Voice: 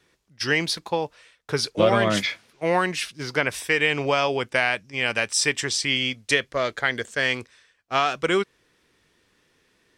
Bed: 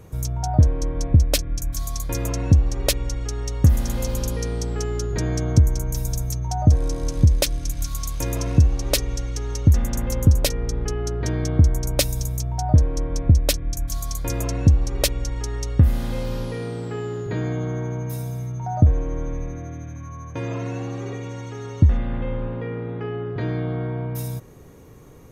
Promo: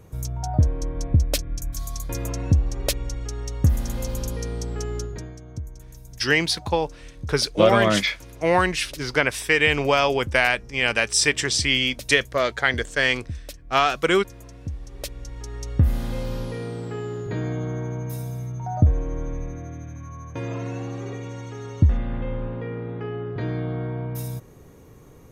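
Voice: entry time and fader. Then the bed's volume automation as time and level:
5.80 s, +2.5 dB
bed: 5.01 s -3.5 dB
5.39 s -18.5 dB
14.60 s -18.5 dB
15.91 s -2 dB

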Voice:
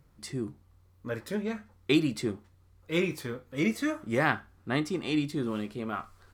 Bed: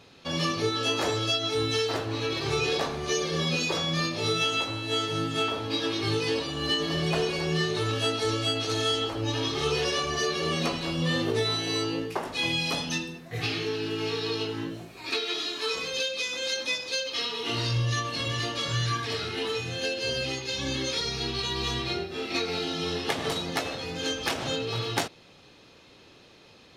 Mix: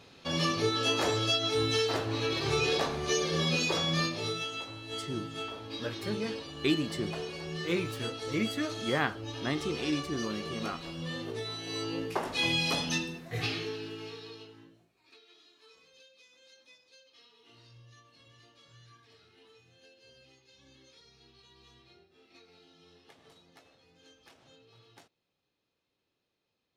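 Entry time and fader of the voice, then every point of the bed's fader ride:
4.75 s, -3.5 dB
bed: 4.01 s -1.5 dB
4.48 s -11 dB
11.57 s -11 dB
12.17 s -1 dB
13.34 s -1 dB
15.10 s -29.5 dB

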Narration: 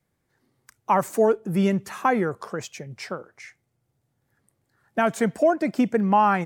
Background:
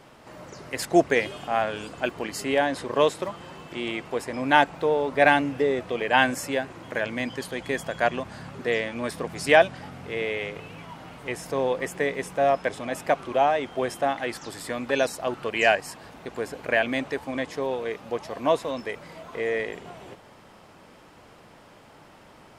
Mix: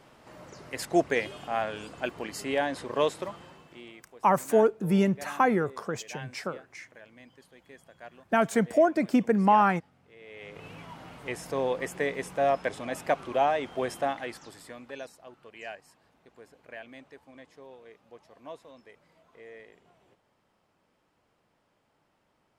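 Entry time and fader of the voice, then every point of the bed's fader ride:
3.35 s, -2.0 dB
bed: 3.34 s -5 dB
4.15 s -23.5 dB
10.19 s -23.5 dB
10.66 s -3.5 dB
14.01 s -3.5 dB
15.25 s -21 dB

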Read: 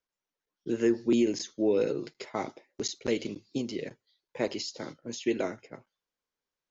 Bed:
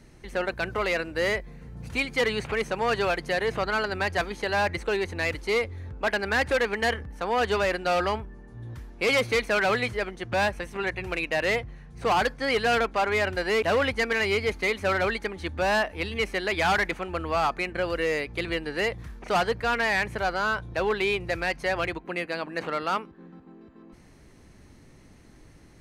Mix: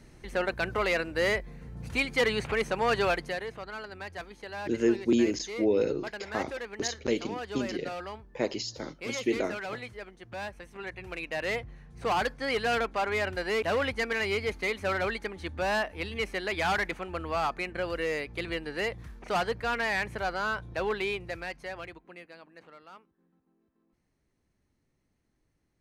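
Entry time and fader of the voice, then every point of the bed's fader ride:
4.00 s, +0.5 dB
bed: 3.14 s -1 dB
3.55 s -13.5 dB
10.40 s -13.5 dB
11.73 s -4.5 dB
20.94 s -4.5 dB
22.82 s -23.5 dB

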